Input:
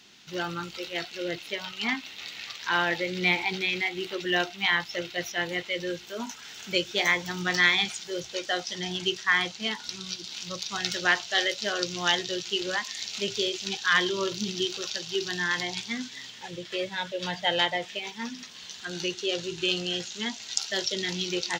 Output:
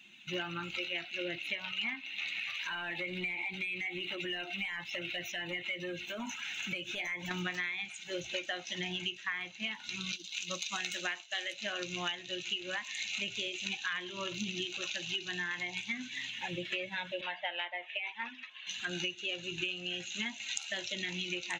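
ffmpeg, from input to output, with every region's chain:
ffmpeg -i in.wav -filter_complex "[0:a]asettb=1/sr,asplit=3[link_01][link_02][link_03];[link_01]atrim=end=2.394[link_04];[link_02]atrim=start=2.39:end=7.31,asetpts=PTS-STARTPTS,afade=type=in:duration=0.004:curve=qsin,afade=type=out:start_time=4.916:duration=0.004:curve=qsin,acompressor=threshold=-36dB:ratio=4:attack=3.2:release=140:knee=1:detection=peak,asoftclip=type=hard:threshold=-35dB[link_05];[link_03]atrim=start=7.306[link_06];[link_04][link_05]acrossfade=duration=0.004:curve1=hsin:curve2=qsin[link_07];[link_07][link_06]acrossfade=duration=0.004:curve1=qsin:curve2=hsin,asettb=1/sr,asplit=3[link_08][link_09][link_10];[link_08]atrim=end=10.124[link_11];[link_09]atrim=start=10.12:end=11.53,asetpts=PTS-STARTPTS,afade=type=in:duration=0.004:curve=qsin,afade=type=out:start_time=1.406:duration=0.004:curve=qsin,agate=range=-33dB:threshold=-35dB:ratio=3:release=100:detection=peak,highpass=frequency=170:width=0.5412,highpass=frequency=170:width=1.3066,bass=frequency=250:gain=-1,treble=frequency=4000:gain=6[link_12];[link_10]atrim=start=11.526[link_13];[link_11][link_12]acrossfade=duration=0.004:curve1=hsin:curve2=qsin[link_14];[link_14][link_13]acrossfade=duration=0.004:curve1=qsin:curve2=hsin,asettb=1/sr,asplit=3[link_15][link_16][link_17];[link_15]atrim=end=17.214[link_18];[link_16]atrim=start=17.21:end=18.67,asetpts=PTS-STARTPTS,afade=type=in:duration=0.004:curve=qsin,afade=type=out:start_time=1.456:duration=0.004:curve=qsin,highpass=620,lowpass=5000,highshelf=frequency=3500:gain=-11.5[link_19];[link_17]atrim=start=18.666[link_20];[link_18][link_19]acrossfade=duration=0.004:curve1=hsin:curve2=qsin[link_21];[link_21][link_20]acrossfade=duration=0.004:curve1=qsin:curve2=hsin,afftdn=noise_reduction=12:noise_floor=-50,superequalizer=7b=0.316:11b=1.41:12b=3.16:14b=0.282,acompressor=threshold=-35dB:ratio=12,volume=1.5dB" out.wav

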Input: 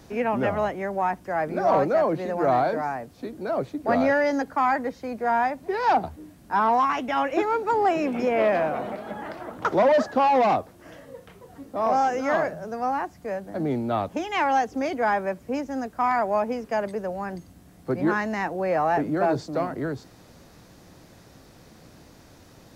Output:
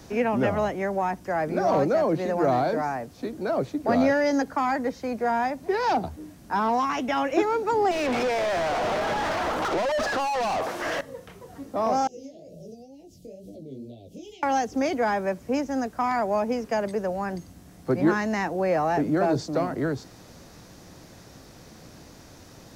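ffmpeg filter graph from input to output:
ffmpeg -i in.wav -filter_complex "[0:a]asettb=1/sr,asplit=3[link_01][link_02][link_03];[link_01]atrim=end=7.914[link_04];[link_02]atrim=start=7.91:end=11.01,asetpts=PTS-STARTPTS,afade=type=in:duration=0.004:curve=qsin,afade=type=out:start_time=3.096:duration=0.004:curve=qsin,acompressor=threshold=-27dB:ratio=10:attack=3.2:release=140:knee=1:detection=peak,lowshelf=frequency=320:gain=-11,asplit=2[link_05][link_06];[link_06]highpass=frequency=720:poles=1,volume=34dB,asoftclip=type=tanh:threshold=-19dB[link_07];[link_05][link_07]amix=inputs=2:normalize=0,lowpass=frequency=1700:poles=1,volume=-6dB[link_08];[link_03]atrim=start=11.006[link_09];[link_04][link_08]acrossfade=duration=0.004:curve1=hsin:curve2=qsin[link_10];[link_10][link_09]acrossfade=duration=0.004:curve1=qsin:curve2=hsin,asettb=1/sr,asplit=3[link_11][link_12][link_13];[link_11]atrim=end=12.074[link_14];[link_12]atrim=start=12.07:end=14.43,asetpts=PTS-STARTPTS,afade=type=in:duration=0.004:curve=qsin,afade=type=out:start_time=2.356:duration=0.004:curve=qsin,acompressor=threshold=-36dB:ratio=8:attack=3.2:release=140:knee=1:detection=peak,flanger=delay=16.5:depth=6.2:speed=2.1,asuperstop=centerf=1300:order=8:qfactor=0.53[link_15];[link_13]atrim=start=14.426[link_16];[link_14][link_15]acrossfade=duration=0.004:curve1=hsin:curve2=qsin[link_17];[link_17][link_16]acrossfade=duration=0.004:curve1=qsin:curve2=hsin,equalizer=frequency=5900:width=2:gain=4,acrossover=split=490|3000[link_18][link_19][link_20];[link_19]acompressor=threshold=-30dB:ratio=2.5[link_21];[link_18][link_21][link_20]amix=inputs=3:normalize=0,volume=2.5dB" out.wav

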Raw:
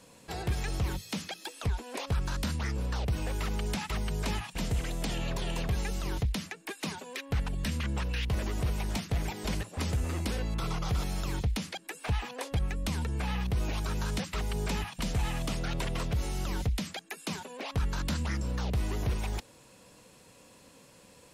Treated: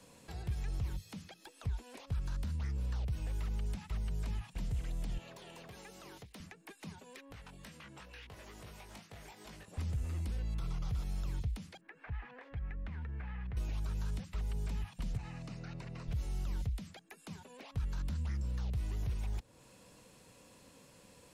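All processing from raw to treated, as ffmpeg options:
ffmpeg -i in.wav -filter_complex "[0:a]asettb=1/sr,asplit=3[link_01][link_02][link_03];[link_01]atrim=end=5.184[link_04];[link_02]atrim=start=5.18:end=6.4,asetpts=PTS-STARTPTS,afade=type=in:duration=0.004:curve=qsin,afade=type=out:start_time=1.216:duration=0.004:curve=qsin,highpass=350,asoftclip=type=hard:threshold=-32.5dB[link_05];[link_03]atrim=start=6.396[link_06];[link_04][link_05]acrossfade=duration=0.004:curve1=hsin:curve2=qsin[link_07];[link_07][link_06]acrossfade=duration=0.004:curve1=qsin:curve2=hsin,asettb=1/sr,asplit=3[link_08][link_09][link_10];[link_08]atrim=end=7.324[link_11];[link_09]atrim=start=7.32:end=9.68,asetpts=PTS-STARTPTS,afade=type=in:duration=0.004:curve=qsin,afade=type=out:start_time=2.356:duration=0.004:curve=qsin,highpass=frequency=720:poles=1,flanger=delay=18.5:depth=2.9:speed=2.3[link_12];[link_10]atrim=start=9.676[link_13];[link_11][link_12]acrossfade=duration=0.004:curve1=hsin:curve2=qsin[link_14];[link_14][link_13]acrossfade=duration=0.004:curve1=qsin:curve2=hsin,asettb=1/sr,asplit=3[link_15][link_16][link_17];[link_15]atrim=end=11.814[link_18];[link_16]atrim=start=11.81:end=13.57,asetpts=PTS-STARTPTS,afade=type=in:duration=0.004:curve=qsin,afade=type=out:start_time=1.756:duration=0.004:curve=qsin,lowpass=frequency=1800:width_type=q:width=2.5,acompressor=threshold=-41dB:ratio=2:attack=3.2:release=140:knee=1:detection=peak[link_19];[link_17]atrim=start=13.566[link_20];[link_18][link_19]acrossfade=duration=0.004:curve1=hsin:curve2=qsin[link_21];[link_21][link_20]acrossfade=duration=0.004:curve1=qsin:curve2=hsin,asettb=1/sr,asplit=3[link_22][link_23][link_24];[link_22]atrim=end=15.174[link_25];[link_23]atrim=start=15.17:end=16.08,asetpts=PTS-STARTPTS,afade=type=in:duration=0.004:curve=qsin,afade=type=out:start_time=0.906:duration=0.004:curve=qsin,highpass=130,lowpass=5000,equalizer=frequency=3300:width=6.1:gain=-14.5[link_26];[link_24]atrim=start=16.076[link_27];[link_25][link_26]acrossfade=duration=0.004:curve1=hsin:curve2=qsin[link_28];[link_28][link_27]acrossfade=duration=0.004:curve1=qsin:curve2=hsin,acrossover=split=150|1800[link_29][link_30][link_31];[link_29]acompressor=threshold=-32dB:ratio=4[link_32];[link_30]acompressor=threshold=-50dB:ratio=4[link_33];[link_31]acompressor=threshold=-54dB:ratio=4[link_34];[link_32][link_33][link_34]amix=inputs=3:normalize=0,lowshelf=frequency=170:gain=3.5,volume=-4dB" out.wav

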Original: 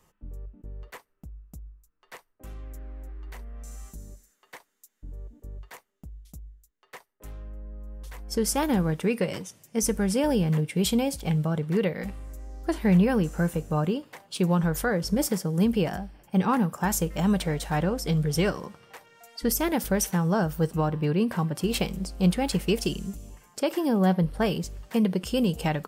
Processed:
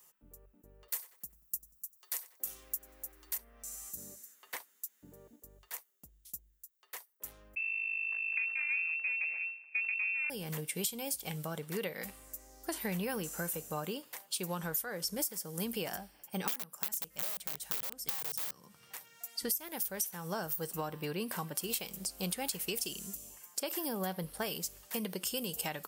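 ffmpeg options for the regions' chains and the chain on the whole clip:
ffmpeg -i in.wav -filter_complex "[0:a]asettb=1/sr,asplit=3[link_01][link_02][link_03];[link_01]atrim=end=0.884[link_04];[link_02]atrim=start=0.88:end=3.38,asetpts=PTS-STARTPTS,afade=type=in:duration=0.004:curve=qsin,afade=type=out:start_time=2.496:duration=0.004:curve=qsin,bass=frequency=250:gain=-2,treble=frequency=4000:gain=12,aecho=1:1:5.5:0.32,atrim=end_sample=110250,asplit=2[link_05][link_06];[link_06]adelay=93,lowpass=frequency=4300:poles=1,volume=-16dB,asplit=2[link_07][link_08];[link_08]adelay=93,lowpass=frequency=4300:poles=1,volume=0.46,asplit=2[link_09][link_10];[link_10]adelay=93,lowpass=frequency=4300:poles=1,volume=0.46,asplit=2[link_11][link_12];[link_12]adelay=93,lowpass=frequency=4300:poles=1,volume=0.46[link_13];[link_05][link_07][link_09][link_11][link_13]amix=inputs=5:normalize=0,atrim=end_sample=110250[link_14];[link_03]atrim=start=3.376[link_15];[link_04][link_14]acrossfade=duration=0.004:curve1=hsin:curve2=qsin[link_16];[link_16][link_15]acrossfade=duration=0.004:curve1=qsin:curve2=hsin,asettb=1/sr,asplit=3[link_17][link_18][link_19];[link_17]atrim=end=3.974[link_20];[link_18]atrim=start=3.97:end=5.36,asetpts=PTS-STARTPTS,afade=type=in:duration=0.004:curve=qsin,afade=type=out:start_time=1.386:duration=0.004:curve=qsin,highpass=150,bass=frequency=250:gain=6,treble=frequency=4000:gain=-6,acontrast=78[link_21];[link_19]atrim=start=5.356[link_22];[link_20][link_21]acrossfade=duration=0.004:curve1=hsin:curve2=qsin[link_23];[link_23][link_22]acrossfade=duration=0.004:curve1=qsin:curve2=hsin,asettb=1/sr,asplit=3[link_24][link_25][link_26];[link_24]atrim=end=7.554[link_27];[link_25]atrim=start=7.55:end=10.3,asetpts=PTS-STARTPTS,afade=type=in:duration=0.004:curve=qsin,afade=type=out:start_time=2.746:duration=0.004:curve=qsin,lowshelf=frequency=330:width_type=q:width=1.5:gain=9.5,aeval=exprs='max(val(0),0)':channel_layout=same,lowpass=frequency=2300:width_type=q:width=0.5098,lowpass=frequency=2300:width_type=q:width=0.6013,lowpass=frequency=2300:width_type=q:width=0.9,lowpass=frequency=2300:width_type=q:width=2.563,afreqshift=-2700[link_28];[link_26]atrim=start=10.296[link_29];[link_27][link_28]acrossfade=duration=0.004:curve1=hsin:curve2=qsin[link_30];[link_30][link_29]acrossfade=duration=0.004:curve1=qsin:curve2=hsin,asettb=1/sr,asplit=3[link_31][link_32][link_33];[link_31]atrim=end=16.454[link_34];[link_32]atrim=start=16.45:end=19.44,asetpts=PTS-STARTPTS,afade=type=in:duration=0.004:curve=qsin,afade=type=out:start_time=2.986:duration=0.004:curve=qsin,highpass=80,asubboost=boost=7:cutoff=200,aeval=exprs='(mod(7.5*val(0)+1,2)-1)/7.5':channel_layout=same[link_35];[link_33]atrim=start=19.436[link_36];[link_34][link_35]acrossfade=duration=0.004:curve1=hsin:curve2=qsin[link_37];[link_37][link_36]acrossfade=duration=0.004:curve1=qsin:curve2=hsin,aemphasis=mode=production:type=riaa,acompressor=threshold=-26dB:ratio=10,volume=-6dB" out.wav

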